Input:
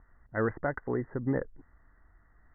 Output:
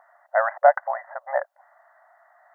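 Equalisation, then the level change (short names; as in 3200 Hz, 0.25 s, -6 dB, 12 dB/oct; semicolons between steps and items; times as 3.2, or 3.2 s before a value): brick-wall FIR high-pass 550 Hz; bell 700 Hz +14 dB 0.73 oct; +8.5 dB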